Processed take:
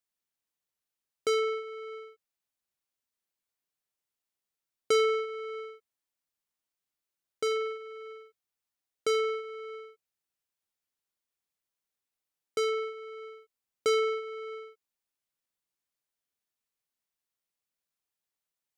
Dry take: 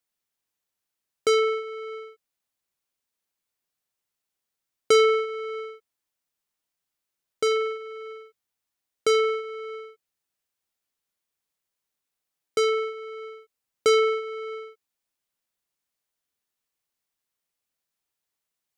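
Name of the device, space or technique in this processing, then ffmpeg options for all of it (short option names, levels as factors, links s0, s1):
parallel distortion: -filter_complex "[0:a]asplit=2[s0][s1];[s1]asoftclip=type=hard:threshold=0.0473,volume=0.251[s2];[s0][s2]amix=inputs=2:normalize=0,volume=0.422"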